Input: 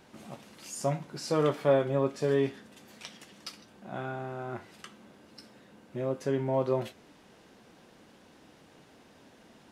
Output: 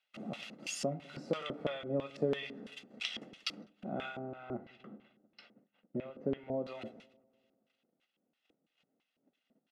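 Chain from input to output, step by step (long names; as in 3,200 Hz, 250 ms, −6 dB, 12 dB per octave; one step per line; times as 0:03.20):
noise gate −52 dBFS, range −30 dB
Chebyshev high-pass filter 160 Hz, order 2
comb filter 1.5 ms, depth 60%
downward compressor 2.5 to 1, threshold −40 dBFS, peak gain reduction 14.5 dB
auto-filter band-pass square 3 Hz 300–2,900 Hz
0:04.19–0:06.54: head-to-tape spacing loss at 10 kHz 32 dB
delay with a low-pass on its return 101 ms, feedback 66%, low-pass 970 Hz, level −21 dB
amplitude modulation by smooth noise, depth 55%
level +16 dB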